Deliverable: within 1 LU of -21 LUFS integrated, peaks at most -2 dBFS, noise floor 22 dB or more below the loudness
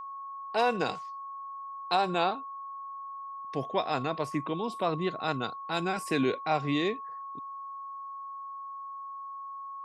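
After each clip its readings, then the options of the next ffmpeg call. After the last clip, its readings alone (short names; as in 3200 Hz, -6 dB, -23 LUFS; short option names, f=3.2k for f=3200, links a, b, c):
steady tone 1100 Hz; tone level -38 dBFS; loudness -32.5 LUFS; peak -13.5 dBFS; loudness target -21.0 LUFS
-> -af "bandreject=f=1.1k:w=30"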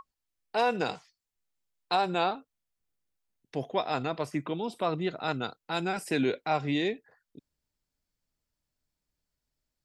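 steady tone none; loudness -31.0 LUFS; peak -14.0 dBFS; loudness target -21.0 LUFS
-> -af "volume=10dB"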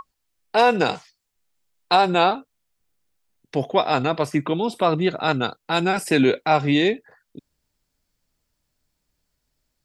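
loudness -21.0 LUFS; peak -4.0 dBFS; noise floor -77 dBFS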